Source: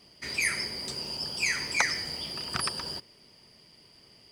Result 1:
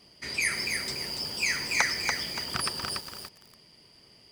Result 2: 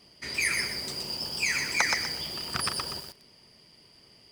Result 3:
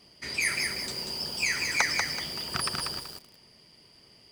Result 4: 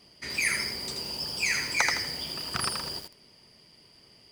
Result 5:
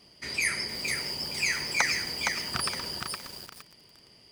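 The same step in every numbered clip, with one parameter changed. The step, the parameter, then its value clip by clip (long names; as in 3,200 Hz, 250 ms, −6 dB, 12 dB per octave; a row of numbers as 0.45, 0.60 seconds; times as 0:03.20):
feedback echo at a low word length, delay time: 287, 123, 190, 81, 465 milliseconds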